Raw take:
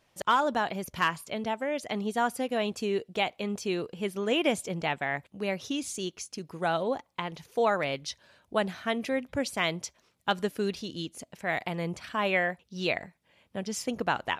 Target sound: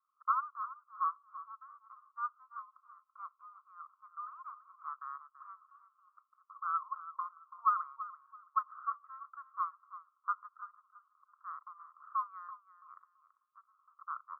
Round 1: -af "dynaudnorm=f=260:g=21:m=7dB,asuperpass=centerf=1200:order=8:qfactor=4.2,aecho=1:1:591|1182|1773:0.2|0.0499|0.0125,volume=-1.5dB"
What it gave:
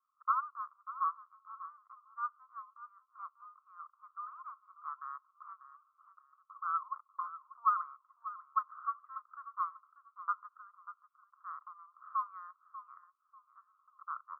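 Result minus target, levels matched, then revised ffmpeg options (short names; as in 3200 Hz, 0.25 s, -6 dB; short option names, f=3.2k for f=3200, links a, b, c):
echo 0.258 s late
-af "dynaudnorm=f=260:g=21:m=7dB,asuperpass=centerf=1200:order=8:qfactor=4.2,aecho=1:1:333|666|999:0.2|0.0499|0.0125,volume=-1.5dB"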